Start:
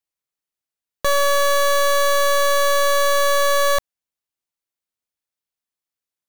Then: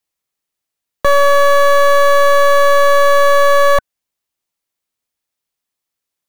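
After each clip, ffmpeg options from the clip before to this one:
-filter_complex "[0:a]bandreject=f=1.5k:w=26,acrossover=split=290|2400[a][b][c];[c]alimiter=level_in=2dB:limit=-24dB:level=0:latency=1,volume=-2dB[d];[a][b][d]amix=inputs=3:normalize=0,volume=8dB"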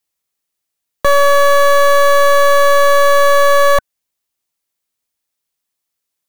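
-af "highshelf=f=4.7k:g=4.5"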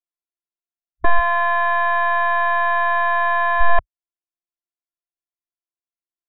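-af "lowpass=1.3k,afftfilt=real='hypot(re,im)*cos(PI*b)':imag='0':win_size=512:overlap=0.75,afwtdn=0.0501,volume=3.5dB"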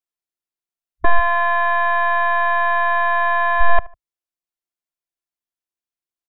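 -filter_complex "[0:a]asplit=2[a][b];[b]adelay=75,lowpass=f=1.8k:p=1,volume=-20.5dB,asplit=2[c][d];[d]adelay=75,lowpass=f=1.8k:p=1,volume=0.3[e];[a][c][e]amix=inputs=3:normalize=0,volume=1dB"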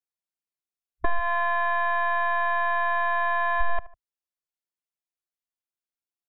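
-af "acompressor=threshold=-12dB:ratio=6,volume=-6dB"

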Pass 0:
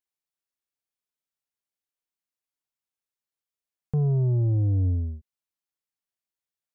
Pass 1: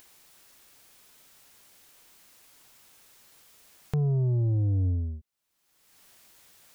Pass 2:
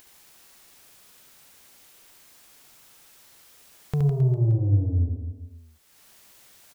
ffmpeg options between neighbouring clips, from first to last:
-af "acompressor=mode=upward:threshold=-26dB:ratio=2.5,volume=-2.5dB"
-af "aecho=1:1:70|157.5|266.9|403.6|574.5:0.631|0.398|0.251|0.158|0.1,volume=1.5dB"

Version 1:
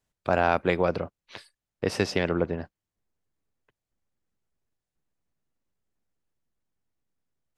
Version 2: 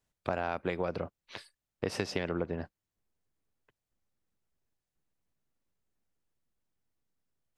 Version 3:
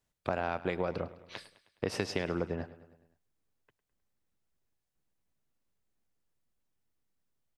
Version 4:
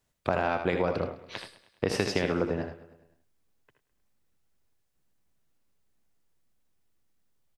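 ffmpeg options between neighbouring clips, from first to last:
-af "acompressor=threshold=-26dB:ratio=10,volume=-1.5dB"
-af "aecho=1:1:104|208|312|416|520:0.141|0.0819|0.0475|0.0276|0.016"
-af "aecho=1:1:63|78:0.211|0.422,volume=5dB"

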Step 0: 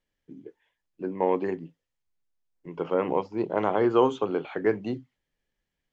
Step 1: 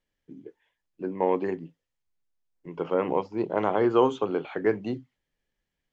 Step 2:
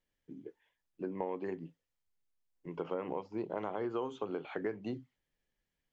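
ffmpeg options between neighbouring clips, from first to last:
-af anull
-af "acompressor=threshold=-30dB:ratio=6,volume=-3.5dB"

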